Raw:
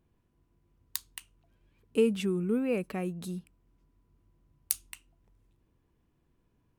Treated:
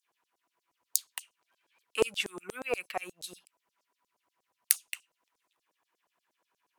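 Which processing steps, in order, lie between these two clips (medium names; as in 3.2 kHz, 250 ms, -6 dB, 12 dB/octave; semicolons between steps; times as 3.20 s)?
Chebyshev shaper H 7 -32 dB, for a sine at -6.5 dBFS; LFO high-pass saw down 8.4 Hz 560–7300 Hz; trim +5 dB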